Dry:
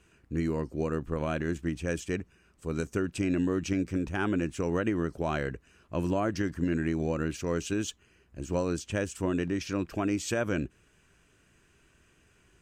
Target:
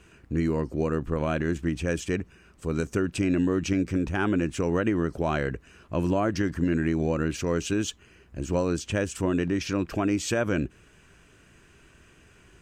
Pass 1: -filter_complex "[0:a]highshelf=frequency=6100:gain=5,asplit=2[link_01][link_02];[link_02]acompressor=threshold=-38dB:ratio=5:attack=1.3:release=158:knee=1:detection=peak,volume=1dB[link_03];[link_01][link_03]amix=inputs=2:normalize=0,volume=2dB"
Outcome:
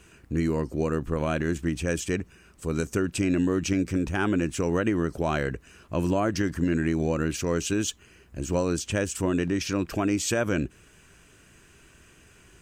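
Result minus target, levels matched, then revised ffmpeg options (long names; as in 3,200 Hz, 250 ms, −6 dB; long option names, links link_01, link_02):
8,000 Hz band +4.5 dB
-filter_complex "[0:a]highshelf=frequency=6100:gain=-4.5,asplit=2[link_01][link_02];[link_02]acompressor=threshold=-38dB:ratio=5:attack=1.3:release=158:knee=1:detection=peak,volume=1dB[link_03];[link_01][link_03]amix=inputs=2:normalize=0,volume=2dB"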